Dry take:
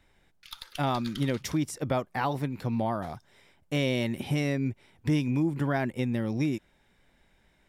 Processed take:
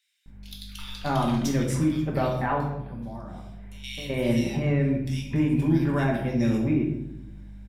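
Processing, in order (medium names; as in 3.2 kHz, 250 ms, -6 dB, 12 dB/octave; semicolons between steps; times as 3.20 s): 2.35–3.84 s: compression 4:1, threshold -44 dBFS, peak gain reduction 17 dB; hum 50 Hz, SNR 16 dB; bands offset in time highs, lows 260 ms, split 2.5 kHz; simulated room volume 230 m³, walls mixed, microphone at 1.2 m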